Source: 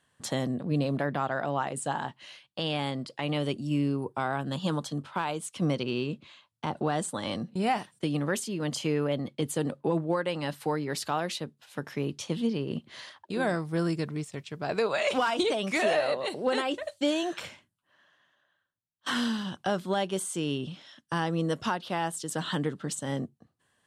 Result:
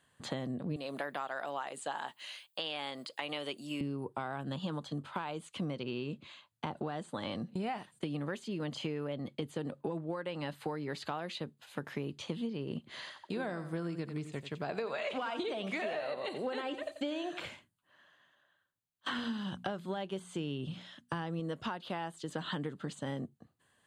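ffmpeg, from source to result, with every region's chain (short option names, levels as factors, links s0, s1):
-filter_complex "[0:a]asettb=1/sr,asplit=3[s0][s1][s2];[s0]atrim=end=0.764[s3];[s1]atrim=start=0.76:end=3.81,asetpts=PTS-STARTPTS,afade=t=in:d=0.004:c=qsin,afade=t=out:st=3.046:d=0.004:c=qsin,highpass=f=430:p=1,aemphasis=mode=production:type=bsi[s4];[s2]atrim=start=3.806[s5];[s3][s4]acrossfade=d=0.004:c1=hsin:c2=qsin[s6];[s6][s5]acrossfade=d=0.004:c1=qsin:c2=hsin,asettb=1/sr,asplit=3[s7][s8][s9];[s7]atrim=end=12.914[s10];[s8]atrim=start=12.91:end=17.46,asetpts=PTS-STARTPTS,afade=t=in:d=0.004:c=qsin,afade=t=out:st=4.546:d=0.004:c=qsin,highpass=98,aecho=1:1:88|176|264:0.224|0.0649|0.0188,atrim=end_sample=200655[s11];[s9]atrim=start=17.456[s12];[s10][s11]acrossfade=d=0.004:c1=hsin:c2=qsin[s13];[s13][s12]acrossfade=d=0.004:c1=qsin:c2=hsin,asettb=1/sr,asplit=3[s14][s15][s16];[s14]atrim=end=19.184[s17];[s15]atrim=start=19.18:end=21.4,asetpts=PTS-STARTPTS,afade=t=in:d=0.004:c=qsin,afade=t=out:st=2.216:d=0.004:c=qsin,highpass=43,equalizer=f=86:t=o:w=1.7:g=6.5,bandreject=f=60:t=h:w=6,bandreject=f=120:t=h:w=6,bandreject=f=180:t=h:w=6,bandreject=f=240:t=h:w=6[s18];[s16]atrim=start=21.396[s19];[s17][s18]acrossfade=d=0.004:c1=hsin:c2=qsin[s20];[s20][s19]acrossfade=d=0.004:c1=qsin:c2=hsin,acrossover=split=4800[s21][s22];[s22]acompressor=threshold=0.00141:ratio=4:attack=1:release=60[s23];[s21][s23]amix=inputs=2:normalize=0,bandreject=f=5500:w=5.8,acompressor=threshold=0.02:ratio=6"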